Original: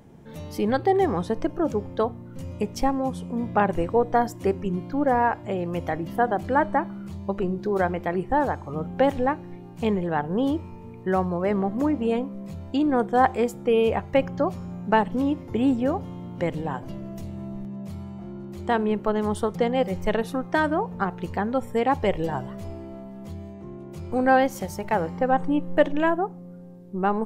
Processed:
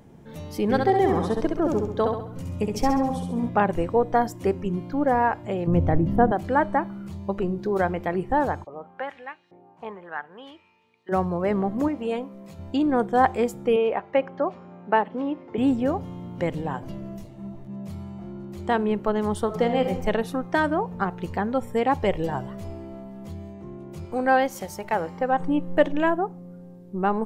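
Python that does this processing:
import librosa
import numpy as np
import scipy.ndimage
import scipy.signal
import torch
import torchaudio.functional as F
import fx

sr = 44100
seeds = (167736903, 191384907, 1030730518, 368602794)

y = fx.echo_feedback(x, sr, ms=67, feedback_pct=46, wet_db=-4.0, at=(0.69, 3.48), fade=0.02)
y = fx.tilt_eq(y, sr, slope=-4.0, at=(5.67, 6.32))
y = fx.filter_lfo_bandpass(y, sr, shape='saw_up', hz=fx.line((8.63, 1.5), (11.11, 0.4)), low_hz=550.0, high_hz=4000.0, q=2.0, at=(8.63, 11.11), fade=0.02)
y = fx.low_shelf(y, sr, hz=240.0, db=-12.0, at=(11.88, 12.59))
y = fx.bandpass_edges(y, sr, low_hz=320.0, high_hz=2600.0, at=(13.76, 15.58))
y = fx.detune_double(y, sr, cents=29, at=(17.16, 17.68), fade=0.02)
y = fx.reverb_throw(y, sr, start_s=19.45, length_s=0.42, rt60_s=0.87, drr_db=5.5)
y = fx.low_shelf(y, sr, hz=250.0, db=-8.5, at=(24.05, 25.4))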